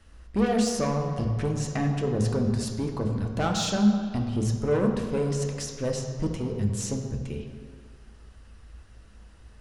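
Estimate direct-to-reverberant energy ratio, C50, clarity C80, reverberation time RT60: 2.0 dB, 5.0 dB, 6.5 dB, no single decay rate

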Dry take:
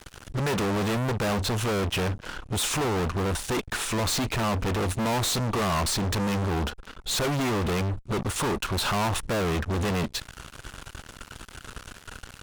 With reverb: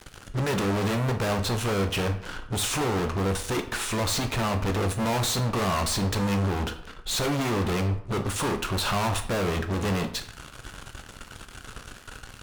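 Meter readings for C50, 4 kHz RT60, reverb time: 11.5 dB, 0.45 s, 0.65 s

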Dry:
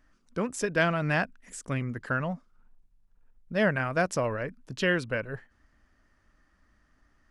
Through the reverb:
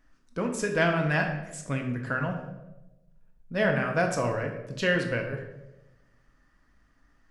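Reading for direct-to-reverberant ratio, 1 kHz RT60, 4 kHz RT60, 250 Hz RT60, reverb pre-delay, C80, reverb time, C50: 2.0 dB, 0.80 s, 0.65 s, 1.1 s, 4 ms, 9.0 dB, 1.0 s, 6.5 dB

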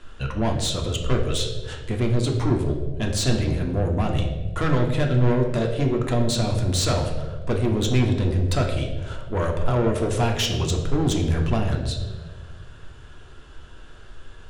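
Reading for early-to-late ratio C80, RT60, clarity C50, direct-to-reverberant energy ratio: 8.0 dB, 1.7 s, 6.0 dB, 1.0 dB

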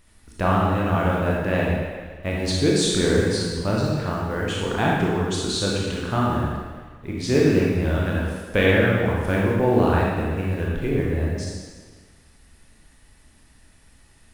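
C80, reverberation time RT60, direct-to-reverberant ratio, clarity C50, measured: 1.0 dB, 1.5 s, -4.5 dB, -1.5 dB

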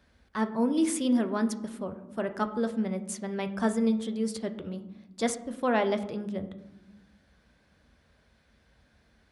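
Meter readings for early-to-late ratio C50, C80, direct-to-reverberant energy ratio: 12.5 dB, 15.0 dB, 8.0 dB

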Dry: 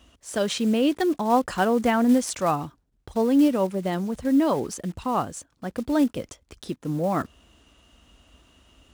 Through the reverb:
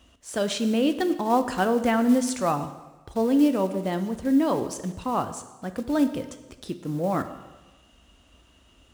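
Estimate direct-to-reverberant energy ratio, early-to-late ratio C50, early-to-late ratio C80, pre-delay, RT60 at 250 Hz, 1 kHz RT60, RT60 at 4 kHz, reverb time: 9.0 dB, 11.5 dB, 13.5 dB, 5 ms, 1.2 s, 1.2 s, 1.1 s, 1.2 s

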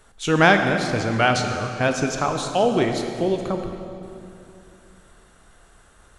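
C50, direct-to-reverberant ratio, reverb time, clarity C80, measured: 5.5 dB, 4.5 dB, 2.7 s, 6.5 dB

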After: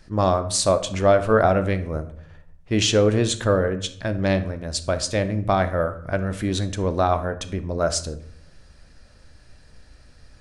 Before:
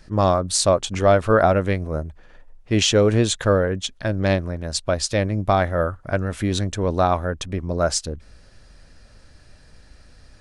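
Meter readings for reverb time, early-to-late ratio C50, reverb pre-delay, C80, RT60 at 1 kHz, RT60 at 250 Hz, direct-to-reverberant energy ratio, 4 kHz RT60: 0.65 s, 13.5 dB, 14 ms, 17.0 dB, 0.65 s, 0.90 s, 10.0 dB, 0.45 s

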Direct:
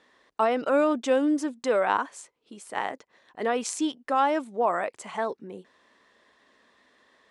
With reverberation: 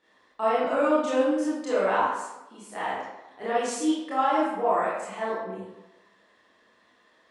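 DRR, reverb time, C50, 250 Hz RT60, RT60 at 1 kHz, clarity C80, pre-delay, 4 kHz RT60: -10.0 dB, 1.0 s, -0.5 dB, 0.95 s, 1.0 s, 2.5 dB, 22 ms, 0.65 s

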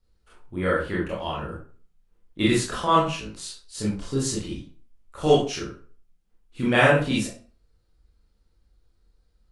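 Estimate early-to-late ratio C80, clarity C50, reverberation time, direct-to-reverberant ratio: 9.0 dB, 3.5 dB, 0.40 s, -6.0 dB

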